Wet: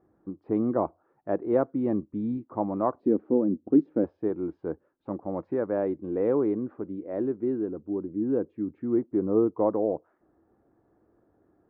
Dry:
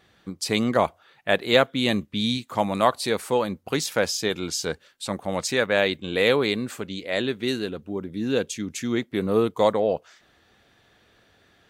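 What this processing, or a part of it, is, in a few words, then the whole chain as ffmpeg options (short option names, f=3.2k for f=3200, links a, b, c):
under water: -filter_complex "[0:a]asettb=1/sr,asplit=3[a][b][c];[a]atrim=end=3.004[d];[b]atrim=start=3:end=4.04,asetpts=PTS-STARTPTS,afade=t=in:d=0.004:c=qsin,afade=t=out:st=1.036:d=0.004:c=qsin,equalizer=f=125:t=o:w=1:g=-5,equalizer=f=250:t=o:w=1:g=12,equalizer=f=1k:t=o:w=1:g=-12,equalizer=f=2k:t=o:w=1:g=-4,equalizer=f=8k:t=o:w=1:g=4[e];[c]atrim=start=4.036[f];[d][e]acrossfade=d=0.004:c1=hsin:c2=qsin[g];[g][f]acrossfade=d=0.004:c1=qsin:c2=hsin,lowpass=f=1.1k:w=0.5412,lowpass=f=1.1k:w=1.3066,equalizer=f=320:t=o:w=0.57:g=12,volume=-7dB"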